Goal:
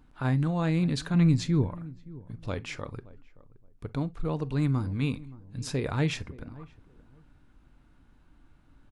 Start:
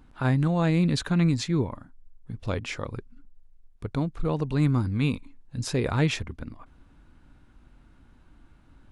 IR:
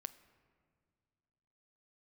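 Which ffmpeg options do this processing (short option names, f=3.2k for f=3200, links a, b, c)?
-filter_complex "[0:a]asettb=1/sr,asplit=3[a][b][c];[a]atrim=end=1.144[d];[b]atrim=start=1.14:end=1.68,asetpts=PTS-STARTPTS,afade=t=in:d=0.004:c=qsin,afade=t=out:st=0.536:d=0.004:c=qsin,lowshelf=f=180:g=9[e];[c]atrim=start=1.676[f];[d][e]acrossfade=d=0.004:c1=hsin:c2=qsin[g];[g][f]acrossfade=d=0.004:c1=qsin:c2=hsin,asplit=2[h][i];[i]adelay=572,lowpass=f=910:p=1,volume=-19dB,asplit=2[j][k];[k]adelay=572,lowpass=f=910:p=1,volume=0.23[l];[h][j][l]amix=inputs=3:normalize=0[m];[1:a]atrim=start_sample=2205,atrim=end_sample=3087[n];[m][n]afir=irnorm=-1:irlink=0"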